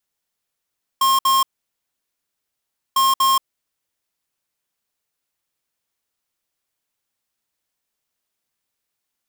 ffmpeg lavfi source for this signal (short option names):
-f lavfi -i "aevalsrc='0.168*(2*lt(mod(1070*t,1),0.5)-1)*clip(min(mod(mod(t,1.95),0.24),0.18-mod(mod(t,1.95),0.24))/0.005,0,1)*lt(mod(t,1.95),0.48)':d=3.9:s=44100"